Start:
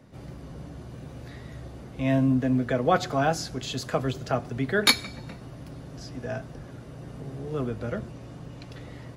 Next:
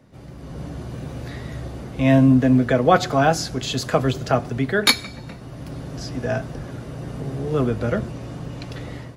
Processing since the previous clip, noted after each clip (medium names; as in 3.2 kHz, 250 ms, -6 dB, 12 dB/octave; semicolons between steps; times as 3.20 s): level rider gain up to 9 dB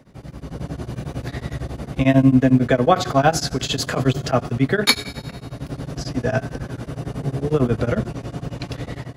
in parallel at +2.5 dB: peak limiter -12.5 dBFS, peak gain reduction 11 dB; on the sum: feedback comb 140 Hz, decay 1.9 s, mix 60%; tremolo of two beating tones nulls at 11 Hz; trim +6 dB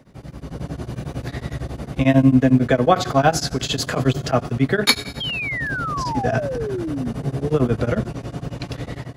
painted sound fall, 5.20–7.13 s, 220–3300 Hz -26 dBFS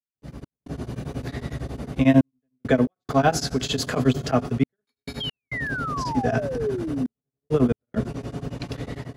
small resonant body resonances 250/420 Hz, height 7 dB, ringing for 90 ms; trance gate ".x.xxxxxxx." 68 bpm -60 dB; trim -3.5 dB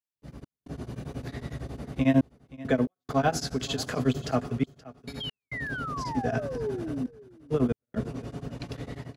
delay 526 ms -19 dB; trim -5.5 dB